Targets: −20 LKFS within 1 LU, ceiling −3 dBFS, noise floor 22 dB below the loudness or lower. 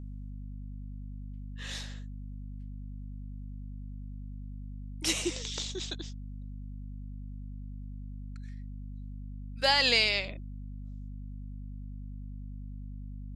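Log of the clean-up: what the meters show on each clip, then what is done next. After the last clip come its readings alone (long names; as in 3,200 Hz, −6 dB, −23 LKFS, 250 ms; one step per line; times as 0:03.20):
mains hum 50 Hz; hum harmonics up to 250 Hz; level of the hum −38 dBFS; integrated loudness −35.0 LKFS; sample peak −11.0 dBFS; target loudness −20.0 LKFS
→ hum removal 50 Hz, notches 5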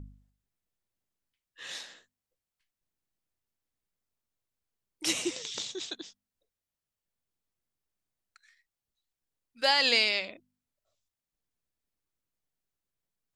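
mains hum none found; integrated loudness −27.5 LKFS; sample peak −11.5 dBFS; target loudness −20.0 LKFS
→ level +7.5 dB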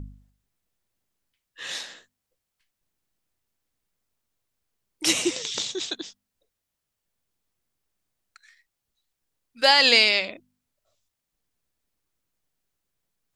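integrated loudness −20.5 LKFS; sample peak −4.0 dBFS; background noise floor −83 dBFS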